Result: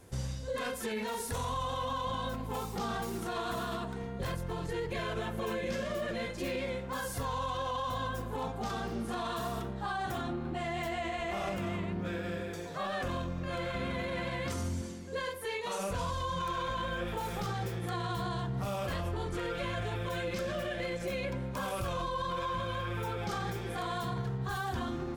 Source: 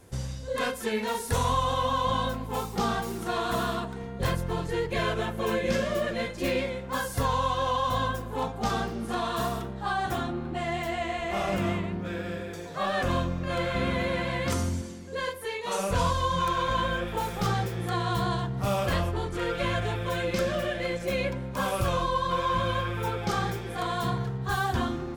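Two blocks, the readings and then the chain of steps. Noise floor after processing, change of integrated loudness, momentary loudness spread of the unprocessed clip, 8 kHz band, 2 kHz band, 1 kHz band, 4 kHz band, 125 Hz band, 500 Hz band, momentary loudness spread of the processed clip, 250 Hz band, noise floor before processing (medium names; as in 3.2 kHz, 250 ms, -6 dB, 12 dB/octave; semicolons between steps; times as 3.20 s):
-40 dBFS, -6.5 dB, 6 LU, -6.0 dB, -6.5 dB, -7.5 dB, -6.5 dB, -6.5 dB, -6.5 dB, 2 LU, -6.0 dB, -38 dBFS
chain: peak limiter -25 dBFS, peak gain reduction 9 dB; trim -2 dB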